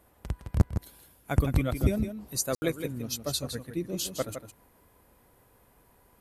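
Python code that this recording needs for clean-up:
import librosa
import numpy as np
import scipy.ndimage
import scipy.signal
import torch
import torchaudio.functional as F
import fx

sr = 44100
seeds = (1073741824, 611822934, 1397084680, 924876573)

y = fx.fix_ambience(x, sr, seeds[0], print_start_s=5.27, print_end_s=5.77, start_s=2.55, end_s=2.62)
y = fx.fix_echo_inverse(y, sr, delay_ms=161, level_db=-9.0)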